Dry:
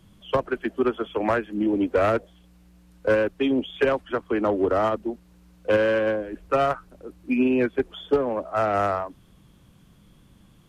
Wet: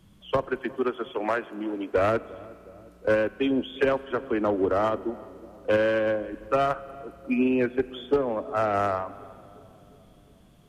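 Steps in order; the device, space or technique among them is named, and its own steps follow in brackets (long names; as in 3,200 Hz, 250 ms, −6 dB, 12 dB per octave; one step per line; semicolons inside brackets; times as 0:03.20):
0:00.58–0:01.92: high-pass filter 210 Hz → 710 Hz 6 dB per octave
dub delay into a spring reverb (feedback echo with a low-pass in the loop 358 ms, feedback 68%, low-pass 820 Hz, level −19.5 dB; spring reverb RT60 2.6 s, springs 42 ms, chirp 25 ms, DRR 18 dB)
level −2 dB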